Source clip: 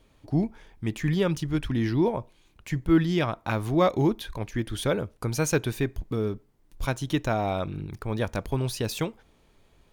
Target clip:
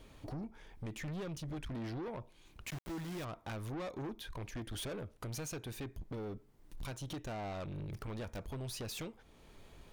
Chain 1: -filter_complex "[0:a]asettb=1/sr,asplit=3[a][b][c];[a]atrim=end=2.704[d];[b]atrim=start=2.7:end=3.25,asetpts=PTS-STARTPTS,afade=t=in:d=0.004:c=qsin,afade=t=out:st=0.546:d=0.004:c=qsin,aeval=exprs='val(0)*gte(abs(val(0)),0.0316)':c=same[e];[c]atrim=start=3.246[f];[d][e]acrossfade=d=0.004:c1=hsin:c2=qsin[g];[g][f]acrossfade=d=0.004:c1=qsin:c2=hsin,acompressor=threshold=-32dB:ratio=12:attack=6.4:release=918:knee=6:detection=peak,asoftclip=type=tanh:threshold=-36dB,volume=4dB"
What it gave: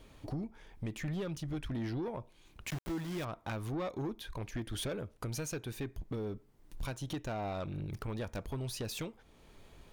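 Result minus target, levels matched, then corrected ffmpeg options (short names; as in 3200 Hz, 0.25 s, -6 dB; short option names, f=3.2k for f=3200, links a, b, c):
soft clip: distortion -5 dB
-filter_complex "[0:a]asettb=1/sr,asplit=3[a][b][c];[a]atrim=end=2.704[d];[b]atrim=start=2.7:end=3.25,asetpts=PTS-STARTPTS,afade=t=in:d=0.004:c=qsin,afade=t=out:st=0.546:d=0.004:c=qsin,aeval=exprs='val(0)*gte(abs(val(0)),0.0316)':c=same[e];[c]atrim=start=3.246[f];[d][e]acrossfade=d=0.004:c1=hsin:c2=qsin[g];[g][f]acrossfade=d=0.004:c1=qsin:c2=hsin,acompressor=threshold=-32dB:ratio=12:attack=6.4:release=918:knee=6:detection=peak,asoftclip=type=tanh:threshold=-42.5dB,volume=4dB"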